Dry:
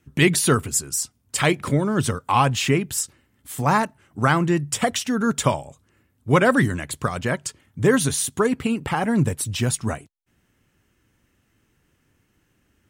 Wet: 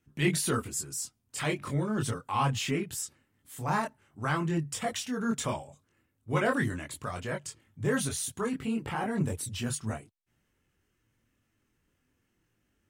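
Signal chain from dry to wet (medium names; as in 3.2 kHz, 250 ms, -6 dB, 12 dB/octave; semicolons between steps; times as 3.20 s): chorus voices 4, 0.41 Hz, delay 23 ms, depth 4.6 ms; transient shaper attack -4 dB, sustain +1 dB; trim -6.5 dB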